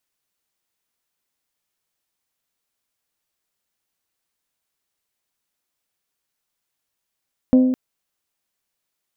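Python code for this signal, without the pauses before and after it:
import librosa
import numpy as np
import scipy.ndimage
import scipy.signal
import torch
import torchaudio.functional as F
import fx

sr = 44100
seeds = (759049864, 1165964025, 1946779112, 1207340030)

y = fx.strike_glass(sr, length_s=0.21, level_db=-8, body='bell', hz=256.0, decay_s=1.17, tilt_db=10, modes=5)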